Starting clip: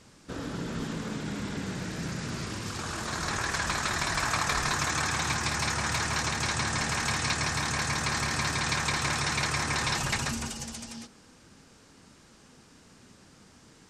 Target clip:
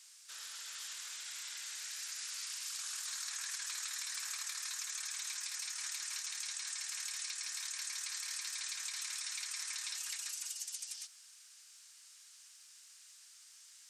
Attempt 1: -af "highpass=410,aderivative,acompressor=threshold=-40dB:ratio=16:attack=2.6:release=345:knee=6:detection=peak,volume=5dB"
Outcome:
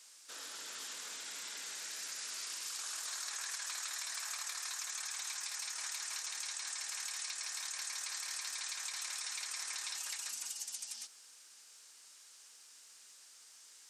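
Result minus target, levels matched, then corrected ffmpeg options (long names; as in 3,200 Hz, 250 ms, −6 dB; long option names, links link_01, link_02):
500 Hz band +14.5 dB
-af "highpass=1400,aderivative,acompressor=threshold=-40dB:ratio=16:attack=2.6:release=345:knee=6:detection=peak,volume=5dB"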